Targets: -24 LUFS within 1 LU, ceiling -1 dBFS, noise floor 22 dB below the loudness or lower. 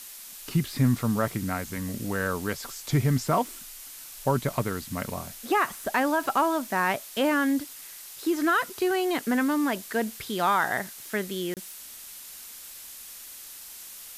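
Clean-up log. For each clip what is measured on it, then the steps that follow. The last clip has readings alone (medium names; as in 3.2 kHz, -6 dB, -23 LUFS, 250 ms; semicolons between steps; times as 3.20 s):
dropouts 1; longest dropout 28 ms; noise floor -44 dBFS; noise floor target -49 dBFS; loudness -27.0 LUFS; peak level -12.5 dBFS; loudness target -24.0 LUFS
-> interpolate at 11.54 s, 28 ms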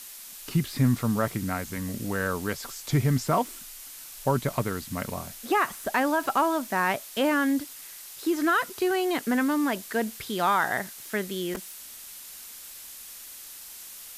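dropouts 0; noise floor -44 dBFS; noise floor target -49 dBFS
-> noise print and reduce 6 dB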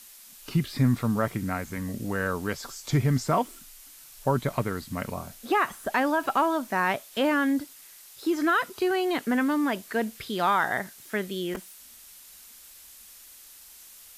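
noise floor -50 dBFS; loudness -27.5 LUFS; peak level -12.5 dBFS; loudness target -24.0 LUFS
-> trim +3.5 dB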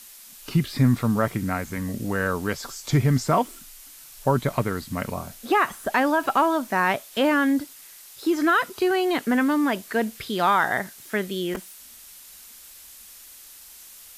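loudness -24.0 LUFS; peak level -9.0 dBFS; noise floor -46 dBFS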